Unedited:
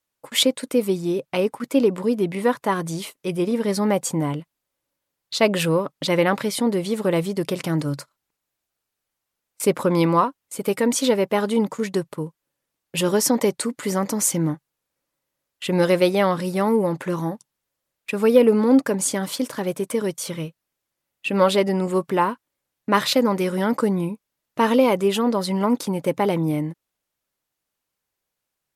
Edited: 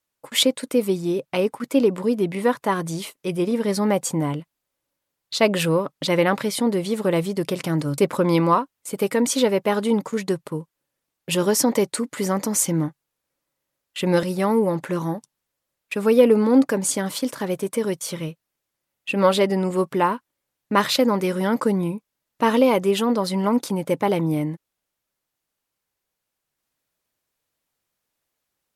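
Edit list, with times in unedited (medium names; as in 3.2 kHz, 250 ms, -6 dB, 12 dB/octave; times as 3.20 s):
7.98–9.64 s: delete
15.89–16.40 s: delete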